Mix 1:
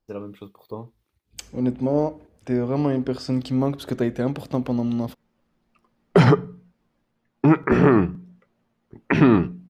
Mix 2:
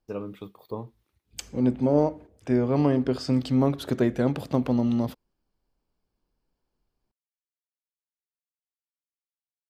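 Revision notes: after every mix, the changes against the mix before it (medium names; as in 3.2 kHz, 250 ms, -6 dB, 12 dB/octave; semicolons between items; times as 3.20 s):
background: muted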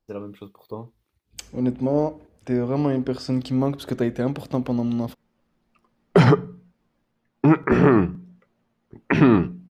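background: unmuted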